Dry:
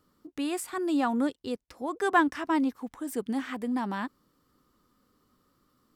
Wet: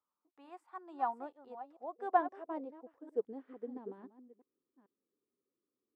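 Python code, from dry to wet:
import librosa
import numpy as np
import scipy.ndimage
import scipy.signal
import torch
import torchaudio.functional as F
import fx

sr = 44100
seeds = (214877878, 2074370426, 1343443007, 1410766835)

y = fx.reverse_delay(x, sr, ms=442, wet_db=-9.5)
y = fx.filter_sweep_bandpass(y, sr, from_hz=910.0, to_hz=390.0, start_s=0.8, end_s=3.95, q=3.6)
y = fx.upward_expand(y, sr, threshold_db=-55.0, expansion=1.5)
y = F.gain(torch.from_numpy(y), 2.5).numpy()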